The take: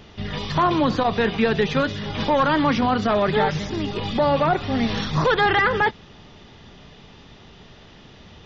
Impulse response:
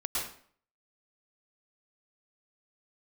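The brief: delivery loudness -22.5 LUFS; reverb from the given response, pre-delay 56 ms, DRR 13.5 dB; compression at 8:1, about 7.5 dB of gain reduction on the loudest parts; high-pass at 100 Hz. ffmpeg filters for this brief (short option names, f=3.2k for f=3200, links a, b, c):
-filter_complex "[0:a]highpass=100,acompressor=threshold=-23dB:ratio=8,asplit=2[a][b];[1:a]atrim=start_sample=2205,adelay=56[c];[b][c]afir=irnorm=-1:irlink=0,volume=-19dB[d];[a][d]amix=inputs=2:normalize=0,volume=4.5dB"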